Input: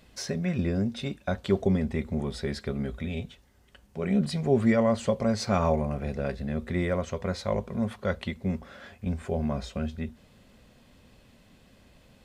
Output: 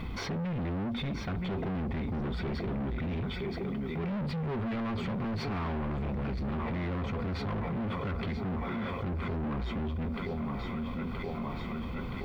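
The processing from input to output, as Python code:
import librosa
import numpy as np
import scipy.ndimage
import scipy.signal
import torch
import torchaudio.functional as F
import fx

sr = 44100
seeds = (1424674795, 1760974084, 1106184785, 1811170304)

y = fx.peak_eq(x, sr, hz=510.0, db=6.5, octaves=0.43)
y = y + 0.81 * np.pad(y, (int(0.9 * sr / 1000.0), 0))[:len(y)]
y = fx.echo_thinned(y, sr, ms=973, feedback_pct=62, hz=230.0, wet_db=-12.0)
y = 10.0 ** (-37.5 / 20.0) * np.tanh(y / 10.0 ** (-37.5 / 20.0))
y = fx.dmg_noise_colour(y, sr, seeds[0], colour='blue', level_db=-60.0)
y = fx.air_absorb(y, sr, metres=390.0)
y = fx.env_flatten(y, sr, amount_pct=70)
y = y * 10.0 ** (6.0 / 20.0)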